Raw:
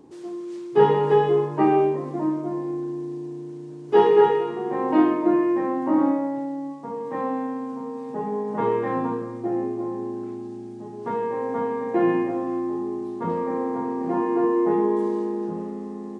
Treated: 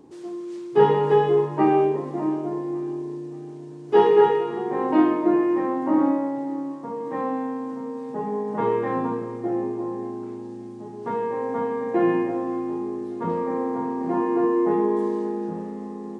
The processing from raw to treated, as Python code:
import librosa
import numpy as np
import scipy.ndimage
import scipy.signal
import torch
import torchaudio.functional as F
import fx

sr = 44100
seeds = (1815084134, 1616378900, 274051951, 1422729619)

y = fx.echo_feedback(x, sr, ms=577, feedback_pct=45, wet_db=-19)